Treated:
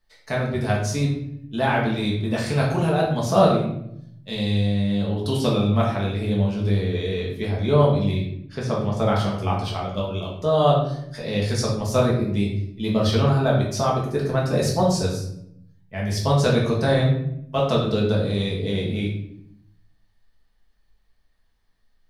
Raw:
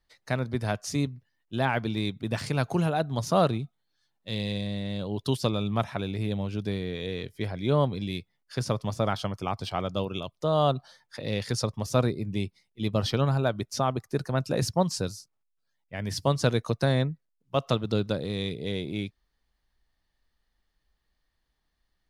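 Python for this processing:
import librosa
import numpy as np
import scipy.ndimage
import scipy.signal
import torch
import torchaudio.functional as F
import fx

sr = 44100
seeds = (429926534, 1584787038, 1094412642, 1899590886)

y = fx.lowpass(x, sr, hz=2700.0, slope=6, at=(8.11, 8.97))
y = fx.level_steps(y, sr, step_db=9, at=(9.71, 10.35))
y = fx.room_shoebox(y, sr, seeds[0], volume_m3=160.0, walls='mixed', distance_m=1.5)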